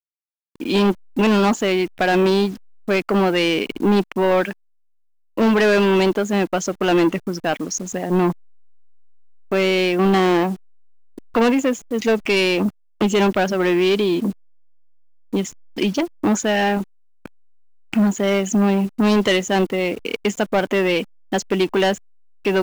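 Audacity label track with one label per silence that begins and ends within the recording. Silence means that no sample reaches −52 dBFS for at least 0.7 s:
4.530000	5.370000	silence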